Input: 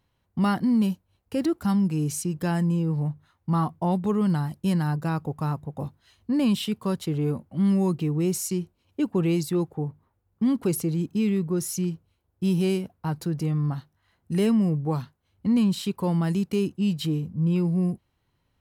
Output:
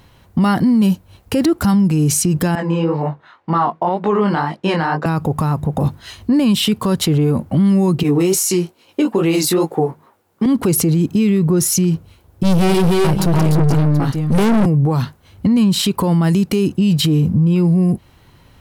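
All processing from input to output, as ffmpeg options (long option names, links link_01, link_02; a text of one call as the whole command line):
ffmpeg -i in.wav -filter_complex "[0:a]asettb=1/sr,asplit=3[link_01][link_02][link_03];[link_01]atrim=end=2.554[link_04];[link_02]atrim=start=2.55:end=5.06,asetpts=PTS-STARTPTS,afade=type=in:duration=0.004:curve=qsin,afade=type=out:start_time=2.506:duration=0.004:curve=qsin,highpass=430,lowpass=2900,flanger=delay=18.5:depth=6.6:speed=2[link_05];[link_03]atrim=start=5.056[link_06];[link_04][link_05]acrossfade=duration=0.004:curve1=hsin:curve2=qsin[link_07];[link_07][link_06]acrossfade=duration=0.004:curve1=qsin:curve2=hsin,asettb=1/sr,asplit=3[link_08][link_09][link_10];[link_08]atrim=end=8.034[link_11];[link_09]atrim=start=8.03:end=10.46,asetpts=PTS-STARTPTS,afade=type=in:duration=0.004:curve=qsin,afade=type=out:start_time=2.426:duration=0.004:curve=qsin,highpass=320,asplit=2[link_12][link_13];[link_13]adelay=13,volume=-13dB[link_14];[link_12][link_14]amix=inputs=2:normalize=0,atrim=end_sample=107163,flanger=delay=18:depth=5.4:speed=2.4[link_15];[link_10]atrim=start=10.456[link_16];[link_11][link_15]acrossfade=duration=0.004:curve1=hsin:curve2=qsin[link_17];[link_17][link_16]acrossfade=duration=0.004:curve1=qsin:curve2=hsin,asettb=1/sr,asplit=3[link_18][link_19][link_20];[link_18]atrim=end=12.434[link_21];[link_19]atrim=start=12.43:end=14.66,asetpts=PTS-STARTPTS,afade=type=in:duration=0.004:curve=qsin,afade=type=out:start_time=2.226:duration=0.004:curve=qsin,aecho=1:1:140|293|311|730:0.2|0.562|0.631|0.188,atrim=end_sample=98343,aeval=exprs='(tanh(31.6*val(0)+0.65)-tanh(0.65))/31.6':channel_layout=same[link_22];[link_20]atrim=start=14.656[link_23];[link_21][link_22]acrossfade=duration=0.004:curve1=hsin:curve2=qsin[link_24];[link_24][link_23]acrossfade=duration=0.004:curve1=qsin:curve2=hsin,acompressor=threshold=-30dB:ratio=6,alimiter=level_in=31dB:limit=-1dB:release=50:level=0:latency=1,volume=-7dB" out.wav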